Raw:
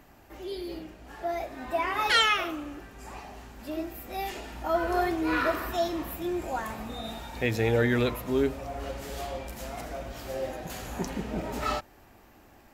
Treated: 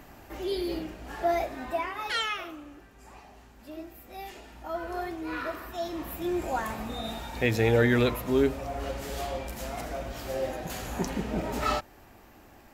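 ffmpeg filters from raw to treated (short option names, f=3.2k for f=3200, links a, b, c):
-af "volume=15dB,afade=t=out:st=1.32:d=0.62:silence=0.223872,afade=t=in:st=5.74:d=0.65:silence=0.334965"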